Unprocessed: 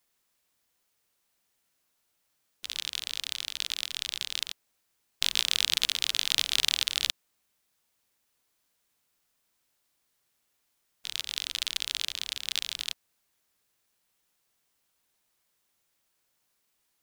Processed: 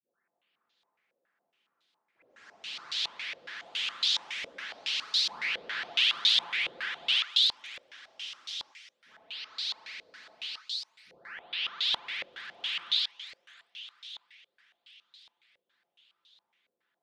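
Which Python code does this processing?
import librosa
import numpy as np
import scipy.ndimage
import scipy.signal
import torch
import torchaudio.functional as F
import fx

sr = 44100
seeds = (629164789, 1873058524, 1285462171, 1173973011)

p1 = fx.spec_delay(x, sr, highs='late', ms=781)
p2 = scipy.signal.sosfilt(scipy.signal.butter(2, 180.0, 'highpass', fs=sr, output='sos'), p1)
p3 = p2 + fx.echo_thinned(p2, sr, ms=618, feedback_pct=54, hz=790.0, wet_db=-12.5, dry=0)
p4 = fx.echo_pitch(p3, sr, ms=277, semitones=4, count=3, db_per_echo=-3.0)
y = fx.filter_held_lowpass(p4, sr, hz=7.2, low_hz=540.0, high_hz=3800.0)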